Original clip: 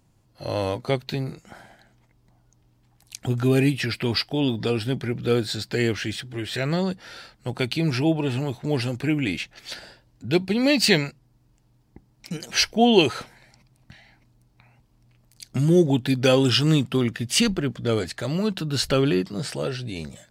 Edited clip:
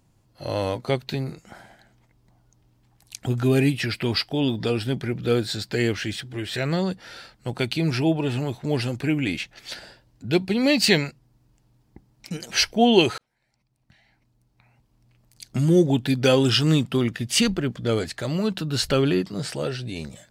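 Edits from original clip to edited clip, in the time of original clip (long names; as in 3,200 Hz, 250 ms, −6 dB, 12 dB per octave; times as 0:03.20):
0:13.18–0:15.49: fade in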